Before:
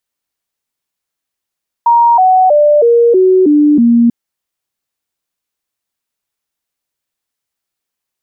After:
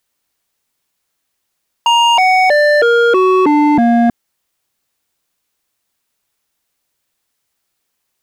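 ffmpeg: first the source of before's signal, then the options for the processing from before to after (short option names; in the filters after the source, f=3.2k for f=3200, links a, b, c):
-f lavfi -i "aevalsrc='0.596*clip(min(mod(t,0.32),0.32-mod(t,0.32))/0.005,0,1)*sin(2*PI*940*pow(2,-floor(t/0.32)/3)*mod(t,0.32))':d=2.24:s=44100"
-filter_complex "[0:a]asplit=2[a][b];[b]asoftclip=type=tanh:threshold=-17.5dB,volume=-7dB[c];[a][c]amix=inputs=2:normalize=0,aeval=exprs='0.668*(cos(1*acos(clip(val(0)/0.668,-1,1)))-cos(1*PI/2))+0.119*(cos(5*acos(clip(val(0)/0.668,-1,1)))-cos(5*PI/2))':c=same,aeval=exprs='0.422*(abs(mod(val(0)/0.422+3,4)-2)-1)':c=same"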